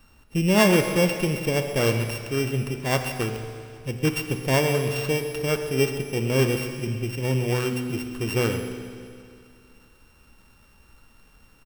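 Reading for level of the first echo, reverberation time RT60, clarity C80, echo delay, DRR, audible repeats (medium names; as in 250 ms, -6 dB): -14.5 dB, 2.3 s, 7.0 dB, 132 ms, 5.5 dB, 1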